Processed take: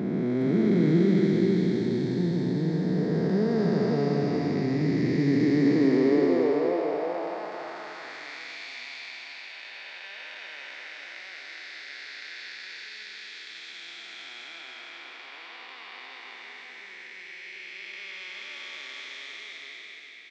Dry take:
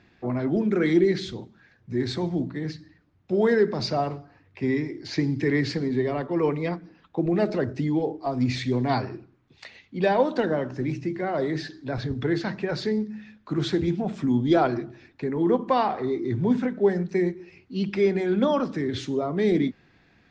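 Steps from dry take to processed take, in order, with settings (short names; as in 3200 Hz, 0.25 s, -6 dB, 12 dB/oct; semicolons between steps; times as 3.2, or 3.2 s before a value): time blur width 1.16 s; high-pass sweep 170 Hz -> 2400 Hz, 5.26–8.59; on a send: echo 0.416 s -4.5 dB; on the sum: gain +2.5 dB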